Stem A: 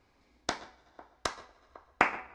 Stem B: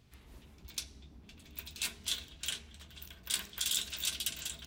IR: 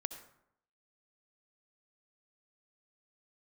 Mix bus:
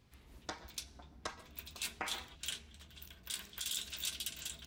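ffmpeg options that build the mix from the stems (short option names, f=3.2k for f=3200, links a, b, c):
-filter_complex "[0:a]asplit=2[a][b];[b]adelay=5.6,afreqshift=1.3[c];[a][c]amix=inputs=2:normalize=1,volume=-5dB[d];[1:a]volume=-3.5dB[e];[d][e]amix=inputs=2:normalize=0,alimiter=level_in=0.5dB:limit=-24dB:level=0:latency=1:release=153,volume=-0.5dB"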